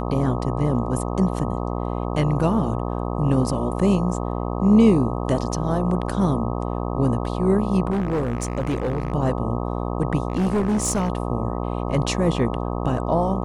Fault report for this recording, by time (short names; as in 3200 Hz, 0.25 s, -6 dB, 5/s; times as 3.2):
buzz 60 Hz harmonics 21 -26 dBFS
7.9–9.12 clipped -19 dBFS
10.28–11.1 clipped -17 dBFS